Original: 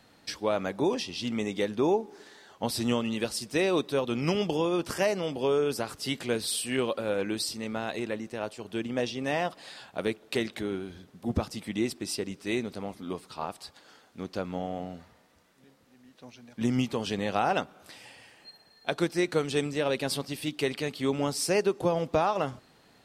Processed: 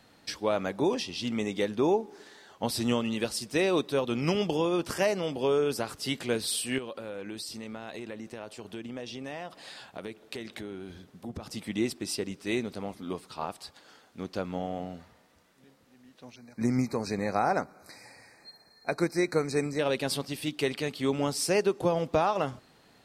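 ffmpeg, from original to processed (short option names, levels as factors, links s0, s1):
-filter_complex "[0:a]asettb=1/sr,asplit=3[s0][s1][s2];[s0]atrim=end=6.784[s3];[s1]atrim=start=6.78:end=11.46,asetpts=PTS-STARTPTS,afade=t=in:d=0.004:c=qsin,afade=t=out:st=4.676:d=0.004:c=qsin,acompressor=threshold=0.0158:ratio=4:attack=3.2:release=140:knee=1:detection=peak[s4];[s2]atrim=start=11.456[s5];[s3][s4]acrossfade=d=0.004:c1=hsin:c2=qsin[s6];[s6][s5]acrossfade=d=0.004:c1=qsin:c2=hsin,asettb=1/sr,asplit=3[s7][s8][s9];[s7]atrim=end=16.364[s10];[s8]atrim=start=16.36:end=19.79,asetpts=PTS-STARTPTS,afade=t=in:d=0.004:c=qsin,afade=t=out:st=3.426:d=0.004:c=qsin,asuperstop=centerf=3100:order=20:qfactor=2.3[s11];[s9]atrim=start=19.786[s12];[s10][s11]acrossfade=d=0.004:c1=hsin:c2=qsin[s13];[s13][s12]acrossfade=d=0.004:c1=qsin:c2=hsin"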